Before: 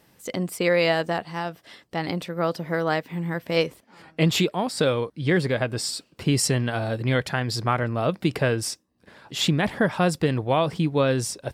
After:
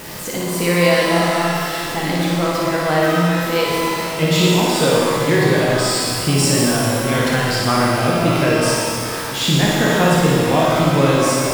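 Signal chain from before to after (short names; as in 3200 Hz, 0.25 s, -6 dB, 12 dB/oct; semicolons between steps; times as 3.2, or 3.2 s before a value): zero-crossing step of -29.5 dBFS; flutter echo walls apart 9.9 m, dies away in 0.78 s; shimmer reverb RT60 2.4 s, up +12 st, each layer -8 dB, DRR -2.5 dB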